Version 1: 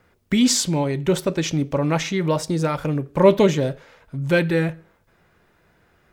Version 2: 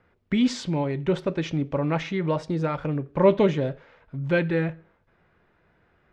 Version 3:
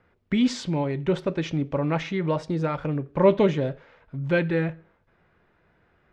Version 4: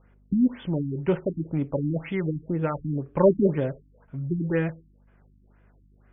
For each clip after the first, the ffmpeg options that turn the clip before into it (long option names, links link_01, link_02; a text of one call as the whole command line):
ffmpeg -i in.wav -af "lowpass=3000,volume=-4dB" out.wav
ffmpeg -i in.wav -af anull out.wav
ffmpeg -i in.wav -af "aeval=exprs='val(0)+0.00158*(sin(2*PI*50*n/s)+sin(2*PI*2*50*n/s)/2+sin(2*PI*3*50*n/s)/3+sin(2*PI*4*50*n/s)/4+sin(2*PI*5*50*n/s)/5)':channel_layout=same,aeval=exprs='0.501*(cos(1*acos(clip(val(0)/0.501,-1,1)))-cos(1*PI/2))+0.0316*(cos(5*acos(clip(val(0)/0.501,-1,1)))-cos(5*PI/2))+0.0316*(cos(7*acos(clip(val(0)/0.501,-1,1)))-cos(7*PI/2))':channel_layout=same,afftfilt=real='re*lt(b*sr/1024,310*pow(3600/310,0.5+0.5*sin(2*PI*2*pts/sr)))':imag='im*lt(b*sr/1024,310*pow(3600/310,0.5+0.5*sin(2*PI*2*pts/sr)))':win_size=1024:overlap=0.75" out.wav